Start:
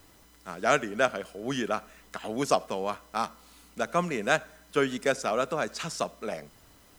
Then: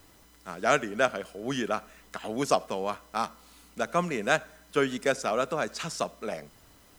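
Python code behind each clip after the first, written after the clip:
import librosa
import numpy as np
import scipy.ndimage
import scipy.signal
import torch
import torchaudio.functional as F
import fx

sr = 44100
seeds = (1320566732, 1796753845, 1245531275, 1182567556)

y = x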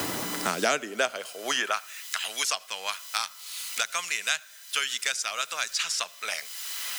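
y = fx.filter_sweep_highpass(x, sr, from_hz=84.0, to_hz=3500.0, start_s=0.06, end_s=2.42, q=0.84)
y = fx.band_squash(y, sr, depth_pct=100)
y = y * 10.0 ** (9.0 / 20.0)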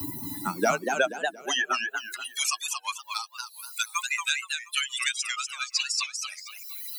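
y = fx.bin_expand(x, sr, power=3.0)
y = fx.echo_warbled(y, sr, ms=236, feedback_pct=33, rate_hz=2.8, cents=210, wet_db=-4.5)
y = y * 10.0 ** (6.5 / 20.0)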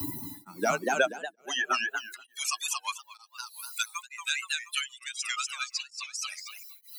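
y = x * np.abs(np.cos(np.pi * 1.1 * np.arange(len(x)) / sr))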